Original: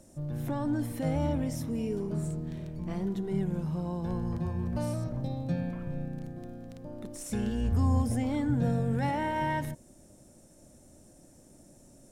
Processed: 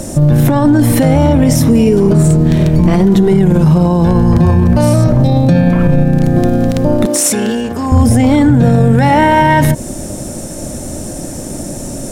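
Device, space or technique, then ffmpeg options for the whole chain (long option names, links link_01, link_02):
loud club master: -filter_complex "[0:a]acompressor=threshold=-37dB:ratio=1.5,asoftclip=type=hard:threshold=-25dB,alimiter=level_in=34dB:limit=-1dB:release=50:level=0:latency=1,asettb=1/sr,asplit=3[link_01][link_02][link_03];[link_01]atrim=end=7.064[link_04];[link_02]atrim=start=7.06:end=7.92,asetpts=PTS-STARTPTS,afade=type=in:duration=0.004:curve=qsin,afade=type=out:start_time=0.856:duration=0.004:curve=qsin,highpass=290[link_05];[link_03]atrim=start=7.916[link_06];[link_04][link_05]acrossfade=duration=0.004:curve1=hsin:curve2=qsin[link_07];[link_07][link_06]acrossfade=duration=0.004:curve1=qsin:curve2=hsin,volume=-1dB"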